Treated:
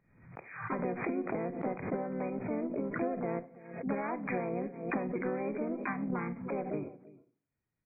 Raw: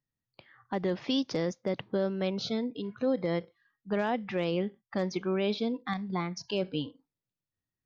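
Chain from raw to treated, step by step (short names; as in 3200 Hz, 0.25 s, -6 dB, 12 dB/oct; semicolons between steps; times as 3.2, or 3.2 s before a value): in parallel at -0.5 dB: limiter -28.5 dBFS, peak gain reduction 9.5 dB; on the sum: compressor 10:1, threshold -32 dBFS, peak gain reduction 11.5 dB; outdoor echo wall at 57 m, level -17 dB; added harmonics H 2 -22 dB, 3 -32 dB, 7 -27 dB, 8 -40 dB, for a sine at -20.5 dBFS; harmoniser -4 st -12 dB, +5 st -1 dB; brick-wall FIR low-pass 2500 Hz; reverb RT60 0.45 s, pre-delay 25 ms, DRR 14 dB; backwards sustainer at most 79 dB/s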